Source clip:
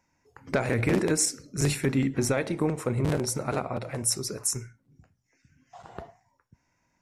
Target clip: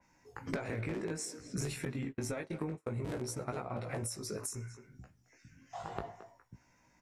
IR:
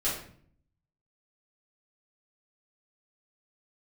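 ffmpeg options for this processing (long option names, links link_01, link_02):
-filter_complex "[0:a]asettb=1/sr,asplit=3[link_01][link_02][link_03];[link_01]atrim=end=0.574[link_04];[link_02]atrim=start=0.57:end=1.24,asetpts=PTS-STARTPTS,afade=type=in:duration=0.004:curve=qsin,afade=type=out:start_time=0.666:duration=0.004:curve=qsin,equalizer=frequency=11000:width=3.1:gain=-12[link_05];[link_03]atrim=start=1.236[link_06];[link_04][link_05]acrossfade=duration=0.004:curve1=hsin:curve2=qsin[link_07];[link_07][link_06]acrossfade=duration=0.004:curve1=qsin:curve2=hsin,asplit=2[link_08][link_09];[link_09]adelay=220,highpass=300,lowpass=3400,asoftclip=type=hard:threshold=-21dB,volume=-16dB[link_10];[link_08][link_10]amix=inputs=2:normalize=0,flanger=delay=16:depth=2.9:speed=0.59,acompressor=threshold=-41dB:ratio=16,asettb=1/sr,asplit=3[link_11][link_12][link_13];[link_11]atrim=end=1.854[link_14];[link_12]atrim=start=1.85:end=3.49,asetpts=PTS-STARTPTS,afade=type=in:duration=0.004:curve=qsin,afade=type=out:start_time=1.636:duration=0.004:curve=qsin,agate=range=-37dB:threshold=-46dB:ratio=16:detection=peak[link_15];[link_13]atrim=start=3.486[link_16];[link_14][link_15]acrossfade=duration=0.004:curve1=hsin:curve2=qsin[link_17];[link_17][link_16]acrossfade=duration=0.004:curve1=qsin:curve2=hsin,adynamicequalizer=threshold=0.001:dfrequency=3100:dqfactor=0.7:tfrequency=3100:tqfactor=0.7:attack=5:release=100:ratio=0.375:range=2:mode=cutabove:tftype=highshelf,volume=7dB"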